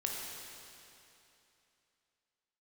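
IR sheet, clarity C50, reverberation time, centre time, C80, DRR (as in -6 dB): 0.0 dB, 2.9 s, 132 ms, 1.0 dB, -2.0 dB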